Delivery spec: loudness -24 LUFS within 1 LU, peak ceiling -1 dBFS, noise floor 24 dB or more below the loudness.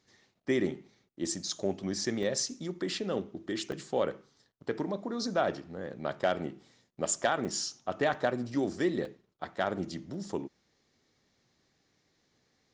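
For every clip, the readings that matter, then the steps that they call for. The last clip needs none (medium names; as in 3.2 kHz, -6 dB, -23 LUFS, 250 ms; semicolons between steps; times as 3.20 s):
dropouts 6; longest dropout 2.1 ms; loudness -33.5 LUFS; peak level -16.5 dBFS; loudness target -24.0 LUFS
-> interpolate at 2.23/3.72/7.45/8.14/9.05/10.14 s, 2.1 ms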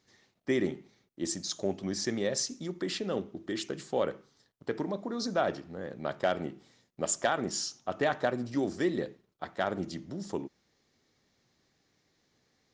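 dropouts 0; loudness -33.5 LUFS; peak level -16.5 dBFS; loudness target -24.0 LUFS
-> trim +9.5 dB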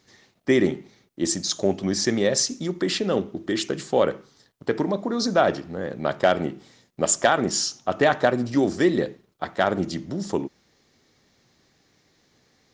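loudness -24.0 LUFS; peak level -7.0 dBFS; noise floor -64 dBFS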